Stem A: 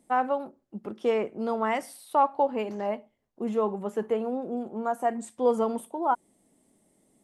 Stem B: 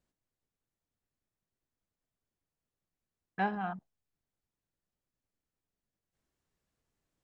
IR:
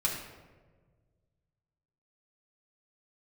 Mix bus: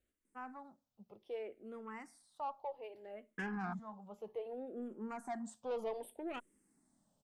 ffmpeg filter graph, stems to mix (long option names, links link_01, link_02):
-filter_complex "[0:a]adelay=250,volume=-7.5dB,afade=type=in:start_time=3.47:duration=0.39:silence=0.354813[link_01];[1:a]acompressor=threshold=-31dB:ratio=3,volume=1.5dB,asplit=2[link_02][link_03];[link_03]apad=whole_len=329993[link_04];[link_01][link_04]sidechaincompress=threshold=-42dB:ratio=4:attack=8.4:release=1440[link_05];[link_05][link_02]amix=inputs=2:normalize=0,asoftclip=type=tanh:threshold=-31.5dB,asplit=2[link_06][link_07];[link_07]afreqshift=-0.64[link_08];[link_06][link_08]amix=inputs=2:normalize=1"